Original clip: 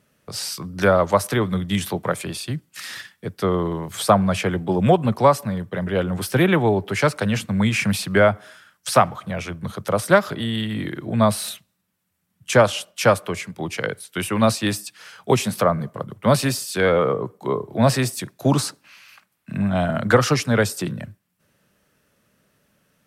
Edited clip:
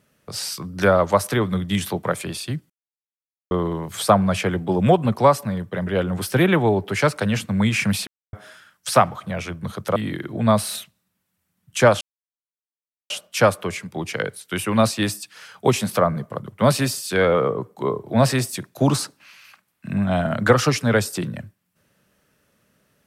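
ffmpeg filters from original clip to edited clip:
-filter_complex "[0:a]asplit=7[a][b][c][d][e][f][g];[a]atrim=end=2.7,asetpts=PTS-STARTPTS,afade=t=out:st=2.696:d=0.004:c=hsin[h];[b]atrim=start=2.7:end=3.51,asetpts=PTS-STARTPTS,volume=0[i];[c]atrim=start=3.51:end=8.07,asetpts=PTS-STARTPTS,afade=t=in:d=0.004:c=hsin,afade=t=out:st=4.556:d=0.004:c=hsin[j];[d]atrim=start=8.07:end=8.33,asetpts=PTS-STARTPTS,volume=0[k];[e]atrim=start=8.33:end=9.962,asetpts=PTS-STARTPTS,afade=t=in:d=0.004:c=hsin[l];[f]atrim=start=10.688:end=12.74,asetpts=PTS-STARTPTS,afade=t=out:st=2.048:d=0.004:c=hsin,apad=pad_dur=1.09[m];[g]atrim=start=12.74,asetpts=PTS-STARTPTS,afade=t=in:d=0.004:c=hsin[n];[h][i][j][k][l]concat=n=5:v=0:a=1[o];[m][n]concat=n=2:v=0:a=1[p];[o][p]acrossfade=d=0.004:c1=hsin:c2=hsin"

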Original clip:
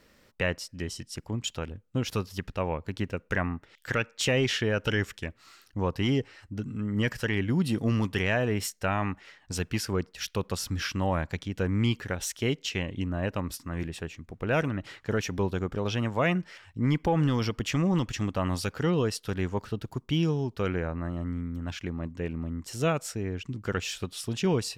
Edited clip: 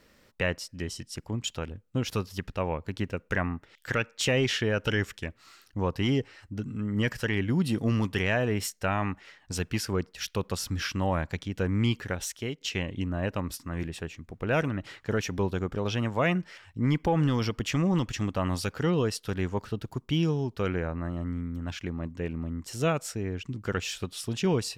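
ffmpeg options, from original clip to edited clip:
-filter_complex "[0:a]asplit=2[a][b];[a]atrim=end=12.61,asetpts=PTS-STARTPTS,afade=t=out:st=12.16:d=0.45:silence=0.281838[c];[b]atrim=start=12.61,asetpts=PTS-STARTPTS,afade=t=in:d=0.004:c=hsin:silence=0.281838[d];[c][d]concat=n=2:v=0:a=1"

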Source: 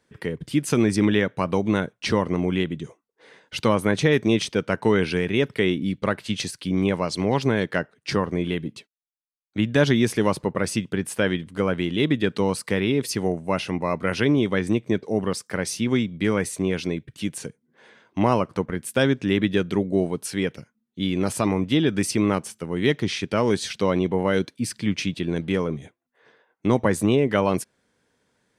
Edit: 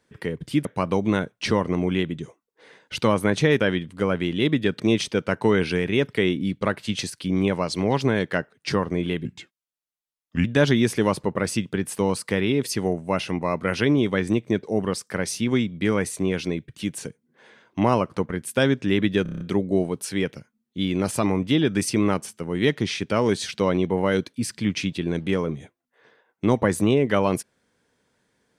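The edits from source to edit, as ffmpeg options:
-filter_complex "[0:a]asplit=13[a][b][c][d][e][f][g][h][i][j][k][l][m];[a]atrim=end=0.652[n];[b]atrim=start=1.258:end=4.212[o];[c]atrim=start=11.178:end=12.382[p];[d]atrim=start=4.208:end=8.664[q];[e]atrim=start=8.66:end=9.64,asetpts=PTS-STARTPTS,asetrate=36162,aresample=44100[r];[f]atrim=start=9.636:end=11.182[s];[g]atrim=start=12.378:end=19.652[t];[h]atrim=start=19.618:end=19.652[u];[i]atrim=start=19.618:end=19.652[v];[j]atrim=start=19.618:end=19.652[w];[k]atrim=start=19.618:end=19.652[x];[l]atrim=start=19.618:end=19.652[y];[m]atrim=start=19.618[z];[n][o]acrossfade=d=0.004:c1=hsin:c2=hsin[aa];[aa][p]acrossfade=d=0.004:c1=hsin:c2=hsin[ab];[ab][q]acrossfade=d=0.004:c1=hsin:c2=hsin[ac];[ac][r]acrossfade=d=0.004:c1=hsin:c2=hsin[ad];[ad][s]acrossfade=d=0.004:c1=hsin:c2=hsin[ae];[ae][t]acrossfade=d=0.004:c1=hsin:c2=hsin[af];[af][u]acrossfade=d=0.004:c1=hsin:c2=hsin[ag];[ag][v]acrossfade=d=0.004:c1=hsin:c2=hsin[ah];[ah][w]acrossfade=d=0.004:c1=hsin:c2=hsin[ai];[ai][x]acrossfade=d=0.004:c1=hsin:c2=hsin[aj];[aj][y]acrossfade=d=0.004:c1=hsin:c2=hsin[ak];[ak][z]acrossfade=d=0.004:c1=hsin:c2=hsin"

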